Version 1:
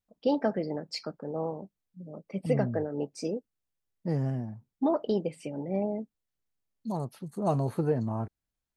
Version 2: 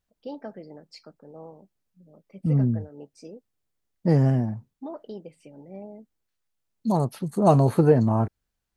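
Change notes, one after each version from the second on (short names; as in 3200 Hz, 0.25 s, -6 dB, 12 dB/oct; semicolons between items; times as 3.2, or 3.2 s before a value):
first voice -10.5 dB; second voice +10.0 dB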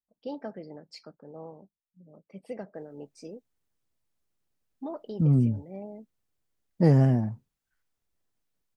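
second voice: entry +2.75 s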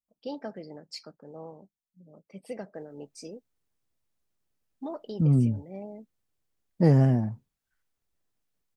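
first voice: add high shelf 3900 Hz +11 dB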